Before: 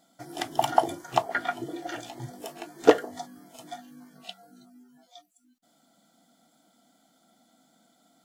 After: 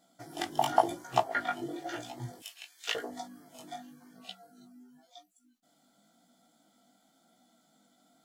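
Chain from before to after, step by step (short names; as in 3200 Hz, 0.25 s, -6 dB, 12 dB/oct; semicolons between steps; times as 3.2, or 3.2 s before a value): 2.4–2.95 resonant high-pass 2800 Hz, resonance Q 1.8; chorus 0.94 Hz, delay 16 ms, depth 4.7 ms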